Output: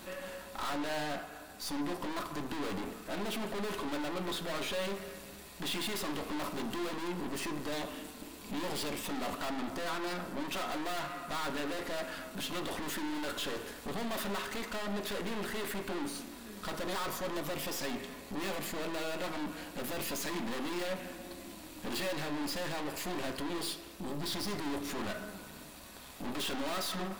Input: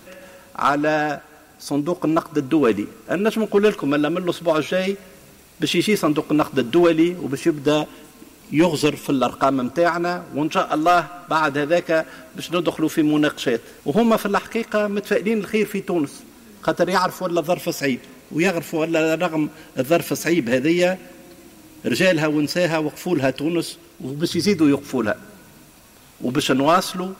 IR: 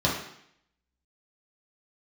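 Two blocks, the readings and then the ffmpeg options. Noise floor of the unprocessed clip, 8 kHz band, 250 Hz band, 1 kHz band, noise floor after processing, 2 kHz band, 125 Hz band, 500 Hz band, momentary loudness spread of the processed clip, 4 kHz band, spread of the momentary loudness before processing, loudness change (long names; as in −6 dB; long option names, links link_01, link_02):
−48 dBFS, −9.0 dB, −18.0 dB, −15.5 dB, −49 dBFS, −14.5 dB, −17.5 dB, −19.0 dB, 7 LU, −9.5 dB, 8 LU, −17.0 dB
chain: -filter_complex "[0:a]aeval=exprs='(tanh(70.8*val(0)+0.65)-tanh(0.65))/70.8':channel_layout=same,asplit=2[link_01][link_02];[1:a]atrim=start_sample=2205,lowshelf=frequency=290:gain=-11.5[link_03];[link_02][link_03]afir=irnorm=-1:irlink=0,volume=-17dB[link_04];[link_01][link_04]amix=inputs=2:normalize=0"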